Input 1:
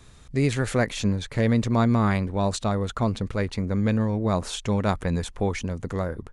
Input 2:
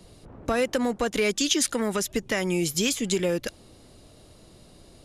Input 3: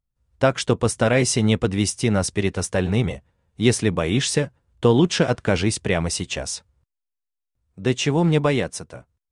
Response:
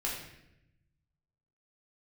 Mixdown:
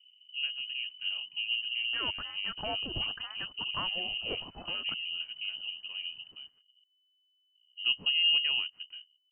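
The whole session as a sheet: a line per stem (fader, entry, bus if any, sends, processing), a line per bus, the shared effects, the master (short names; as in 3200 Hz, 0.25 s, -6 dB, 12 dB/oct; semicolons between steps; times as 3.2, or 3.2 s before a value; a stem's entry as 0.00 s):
-12.0 dB, 0.00 s, no send, steep low-pass 770 Hz 36 dB/oct
-5.0 dB, 1.45 s, no send, HPF 1400 Hz 12 dB/oct
-16.0 dB, 0.00 s, no send, tilt -4 dB/oct; auto duck -14 dB, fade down 0.55 s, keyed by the first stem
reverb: off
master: bell 660 Hz -13 dB 1.2 oct; inverted band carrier 3000 Hz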